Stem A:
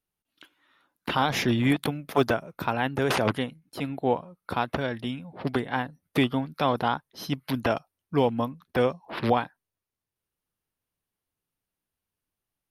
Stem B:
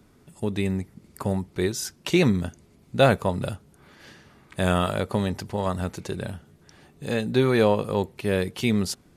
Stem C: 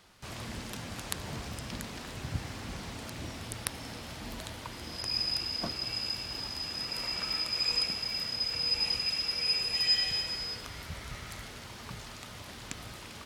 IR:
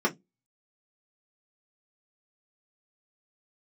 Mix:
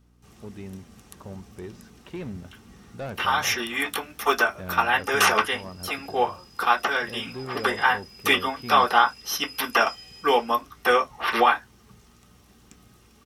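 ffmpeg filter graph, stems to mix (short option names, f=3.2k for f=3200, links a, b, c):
-filter_complex "[0:a]highpass=1.2k,highshelf=f=7.3k:g=11.5,dynaudnorm=f=370:g=11:m=9dB,adelay=2100,volume=0.5dB,asplit=2[a][b];[b]volume=-6.5dB[c];[1:a]lowpass=2.3k,asoftclip=type=tanh:threshold=-16dB,volume=-12.5dB[d];[2:a]highshelf=f=8.3k:g=11.5,volume=-15dB,asplit=2[e][f];[f]volume=-11dB[g];[3:a]atrim=start_sample=2205[h];[c][g]amix=inputs=2:normalize=0[i];[i][h]afir=irnorm=-1:irlink=0[j];[a][d][e][j]amix=inputs=4:normalize=0,aeval=exprs='val(0)+0.00112*(sin(2*PI*60*n/s)+sin(2*PI*2*60*n/s)/2+sin(2*PI*3*60*n/s)/3+sin(2*PI*4*60*n/s)/4+sin(2*PI*5*60*n/s)/5)':c=same"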